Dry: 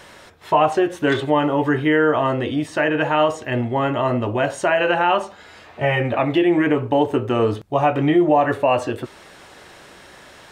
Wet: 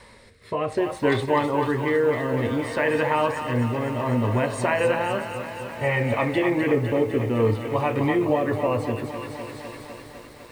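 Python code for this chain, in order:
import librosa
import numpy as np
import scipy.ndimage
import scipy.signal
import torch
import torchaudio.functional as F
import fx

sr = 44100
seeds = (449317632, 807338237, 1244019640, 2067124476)

y = fx.low_shelf(x, sr, hz=86.0, db=11.0)
y = fx.echo_thinned(y, sr, ms=252, feedback_pct=76, hz=1100.0, wet_db=-7.5)
y = fx.rotary(y, sr, hz=0.6)
y = fx.ripple_eq(y, sr, per_octave=0.94, db=9)
y = fx.echo_crushed(y, sr, ms=253, feedback_pct=80, bits=7, wet_db=-11.0)
y = y * 10.0 ** (-3.5 / 20.0)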